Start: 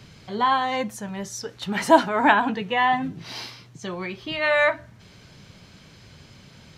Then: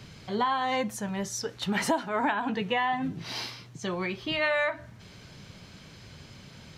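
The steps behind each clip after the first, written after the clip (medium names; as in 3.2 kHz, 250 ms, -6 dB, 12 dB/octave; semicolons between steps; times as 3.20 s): compression 16:1, threshold -23 dBFS, peak gain reduction 15 dB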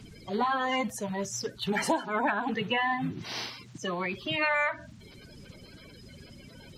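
coarse spectral quantiser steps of 30 dB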